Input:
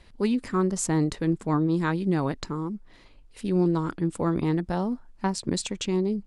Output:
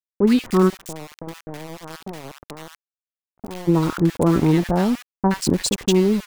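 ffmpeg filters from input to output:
-filter_complex "[0:a]asplit=3[s0][s1][s2];[s0]afade=t=out:st=0.69:d=0.02[s3];[s1]acompressor=threshold=0.0112:ratio=5,afade=t=in:st=0.69:d=0.02,afade=t=out:st=3.67:d=0.02[s4];[s2]afade=t=in:st=3.67:d=0.02[s5];[s3][s4][s5]amix=inputs=3:normalize=0,aeval=exprs='val(0)*gte(abs(val(0)),0.0178)':c=same,acrossover=split=1200[s6][s7];[s7]adelay=70[s8];[s6][s8]amix=inputs=2:normalize=0,volume=2.66"

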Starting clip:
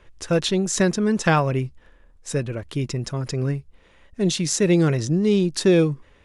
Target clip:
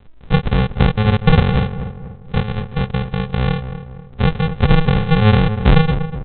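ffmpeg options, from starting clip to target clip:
-filter_complex "[0:a]aresample=8000,acrusher=samples=25:mix=1:aa=0.000001,aresample=44100,asplit=2[s0][s1];[s1]adelay=242,lowpass=f=1400:p=1,volume=0.316,asplit=2[s2][s3];[s3]adelay=242,lowpass=f=1400:p=1,volume=0.45,asplit=2[s4][s5];[s5]adelay=242,lowpass=f=1400:p=1,volume=0.45,asplit=2[s6][s7];[s7]adelay=242,lowpass=f=1400:p=1,volume=0.45,asplit=2[s8][s9];[s9]adelay=242,lowpass=f=1400:p=1,volume=0.45[s10];[s0][s2][s4][s6][s8][s10]amix=inputs=6:normalize=0,volume=2"

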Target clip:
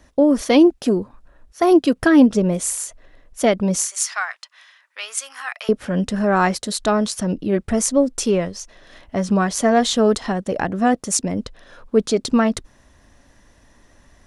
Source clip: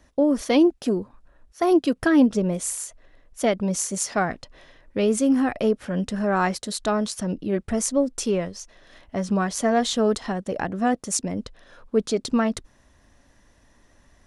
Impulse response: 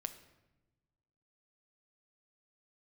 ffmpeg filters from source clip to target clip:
-filter_complex "[0:a]asettb=1/sr,asplit=3[s0][s1][s2];[s0]atrim=end=3.854[s3];[s1]atrim=start=3.85:end=5.69,asetpts=PTS-STARTPTS,afade=t=in:d=0.004:c=qsin,afade=t=out:st=1.836:d=0.004:c=qsin,highpass=f=1100:w=0.5412,highpass=f=1100:w=1.3066[s4];[s2]atrim=start=5.686[s5];[s3][s4]acrossfade=d=0.004:c1=hsin:c2=qsin[s6];[s6][s5]acrossfade=d=0.004:c1=qsin:c2=hsin,volume=1.78"

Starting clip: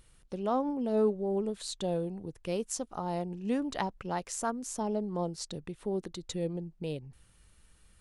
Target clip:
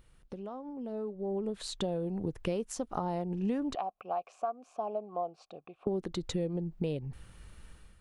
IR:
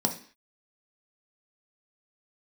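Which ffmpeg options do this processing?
-filter_complex "[0:a]asettb=1/sr,asplit=3[s0][s1][s2];[s0]atrim=end=3.754[s3];[s1]atrim=start=3.75:end=5.87,asetpts=PTS-STARTPTS,afade=t=in:d=0.004:c=qsin,afade=t=out:st=2.116:d=0.004:c=qsin,asplit=3[s4][s5][s6];[s4]bandpass=f=730:t=q:w=8,volume=1[s7];[s5]bandpass=f=1090:t=q:w=8,volume=0.501[s8];[s6]bandpass=f=2440:t=q:w=8,volume=0.355[s9];[s7][s8][s9]amix=inputs=3:normalize=0[s10];[s2]atrim=start=5.866[s11];[s3][s10]acrossfade=d=0.004:c1=hsin:c2=qsin[s12];[s12][s11]acrossfade=d=0.004:c1=qsin:c2=hsin,acompressor=threshold=0.01:ratio=10,equalizer=f=9600:w=0.35:g=-9.5,dynaudnorm=f=770:g=3:m=3.55"

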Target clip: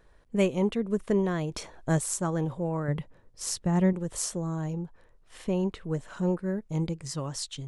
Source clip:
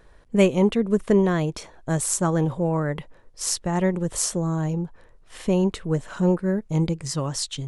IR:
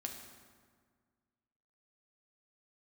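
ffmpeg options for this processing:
-filter_complex "[0:a]asettb=1/sr,asplit=3[s0][s1][s2];[s0]atrim=end=1.514[s3];[s1]atrim=start=1.51:end=1.99,asetpts=PTS-STARTPTS,afade=t=in:d=0.004:c=qsin,afade=t=out:st=0.476:d=0.004:c=qsin,acontrast=55[s4];[s2]atrim=start=1.986[s5];[s3][s4]acrossfade=d=0.004:c1=hsin:c2=qsin[s6];[s6][s5]acrossfade=d=0.004:c1=qsin:c2=hsin,asettb=1/sr,asplit=3[s7][s8][s9];[s7]atrim=end=2.884[s10];[s8]atrim=start=2.88:end=3.93,asetpts=PTS-STARTPTS,afade=t=in:d=0.004:c=qsin,afade=t=out:st=1.046:d=0.004:c=qsin,equalizer=f=130:t=o:w=2.2:g=9[s11];[s9]atrim=start=3.926[s12];[s10][s11]acrossfade=d=0.004:c1=hsin:c2=qsin[s13];[s13][s12]acrossfade=d=0.004:c1=qsin:c2=hsin,asettb=1/sr,asplit=3[s14][s15][s16];[s14]atrim=end=5.444[s17];[s15]atrim=start=5.44:end=5.86,asetpts=PTS-STARTPTS,afade=t=in:d=0.004:c=qsin,afade=t=out:st=0.416:d=0.004:c=qsin,acrossover=split=4000[s18][s19];[s19]acompressor=threshold=0.00355:ratio=4:attack=1:release=60[s20];[s18][s20]amix=inputs=2:normalize=0[s21];[s16]atrim=start=5.856[s22];[s17][s21]acrossfade=d=0.004:c1=hsin:c2=qsin[s23];[s23][s22]acrossfade=d=0.004:c1=qsin:c2=hsin,volume=0.447"

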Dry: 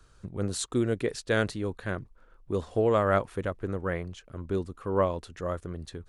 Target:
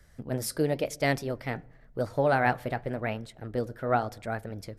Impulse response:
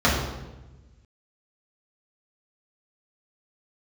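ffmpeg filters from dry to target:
-filter_complex "[0:a]asplit=2[s0][s1];[1:a]atrim=start_sample=2205[s2];[s1][s2]afir=irnorm=-1:irlink=0,volume=0.00794[s3];[s0][s3]amix=inputs=2:normalize=0,flanger=delay=0.7:depth=8.5:regen=-77:speed=0.73:shape=sinusoidal,asetrate=56007,aresample=44100,volume=1.58"

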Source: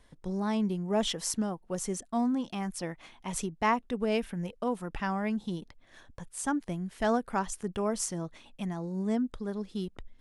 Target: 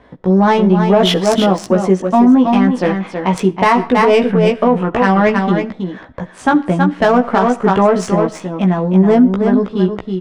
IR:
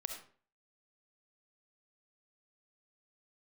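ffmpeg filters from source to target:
-filter_complex "[0:a]highpass=f=240:p=1,adynamicsmooth=sensitivity=2:basefreq=1700,asplit=2[s0][s1];[s1]adelay=16,volume=0.708[s2];[s0][s2]amix=inputs=2:normalize=0,aecho=1:1:323:0.447,asplit=2[s3][s4];[1:a]atrim=start_sample=2205[s5];[s4][s5]afir=irnorm=-1:irlink=0,volume=0.237[s6];[s3][s6]amix=inputs=2:normalize=0,alimiter=level_in=12.6:limit=0.891:release=50:level=0:latency=1,volume=0.841"

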